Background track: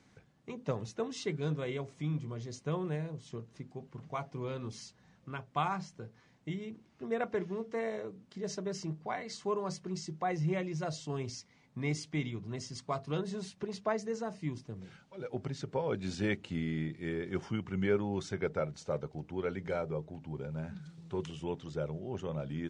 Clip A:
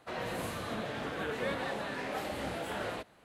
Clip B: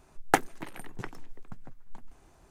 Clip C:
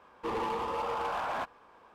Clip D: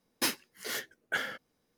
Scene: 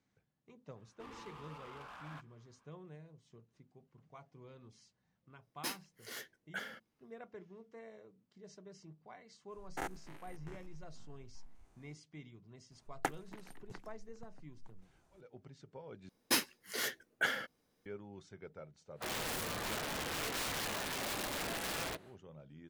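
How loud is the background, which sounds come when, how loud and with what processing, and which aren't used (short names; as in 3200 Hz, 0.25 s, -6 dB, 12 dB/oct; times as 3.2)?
background track -17 dB
0.76 add C -14 dB + band shelf 580 Hz -8.5 dB
5.42 add D -10.5 dB
9.48 add B -9.5 dB, fades 0.05 s + stepped spectrum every 0.1 s
12.71 add B -12.5 dB
16.09 replace with D -1 dB
18.94 add A -1 dB, fades 0.10 s + wrapped overs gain 32.5 dB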